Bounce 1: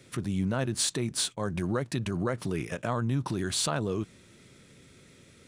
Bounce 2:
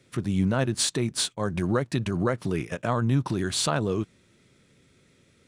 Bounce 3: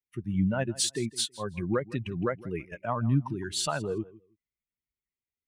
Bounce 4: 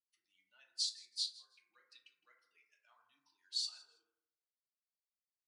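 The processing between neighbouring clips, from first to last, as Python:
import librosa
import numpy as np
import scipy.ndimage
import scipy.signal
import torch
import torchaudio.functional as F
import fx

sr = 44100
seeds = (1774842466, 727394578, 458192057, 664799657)

y1 = fx.high_shelf(x, sr, hz=7500.0, db=-4.5)
y1 = fx.upward_expand(y1, sr, threshold_db=-48.0, expansion=1.5)
y1 = y1 * librosa.db_to_amplitude(6.0)
y2 = fx.bin_expand(y1, sr, power=2.0)
y2 = fx.echo_feedback(y2, sr, ms=162, feedback_pct=18, wet_db=-20.0)
y3 = fx.ladder_bandpass(y2, sr, hz=4900.0, resonance_pct=70)
y3 = fx.rev_fdn(y3, sr, rt60_s=0.81, lf_ratio=0.85, hf_ratio=0.3, size_ms=20.0, drr_db=-1.0)
y3 = y3 * librosa.db_to_amplitude(-3.0)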